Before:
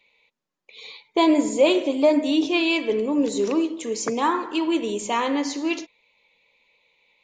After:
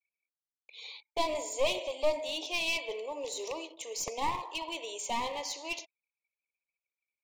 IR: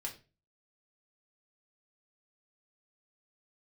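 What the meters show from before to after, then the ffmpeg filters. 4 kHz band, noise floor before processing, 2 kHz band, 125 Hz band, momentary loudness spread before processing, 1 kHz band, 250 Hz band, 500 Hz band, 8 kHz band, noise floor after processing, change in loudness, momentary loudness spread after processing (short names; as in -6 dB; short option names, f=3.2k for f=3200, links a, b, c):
-6.0 dB, -84 dBFS, -8.0 dB, n/a, 9 LU, -9.0 dB, -25.5 dB, -12.0 dB, -4.0 dB, under -85 dBFS, -12.0 dB, 9 LU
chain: -af "highpass=f=590:w=0.5412,highpass=f=590:w=1.3066,anlmdn=0.00631,aeval=exprs='clip(val(0),-1,0.0376)':c=same,asuperstop=centerf=1500:order=4:qfactor=1.3,volume=-4dB"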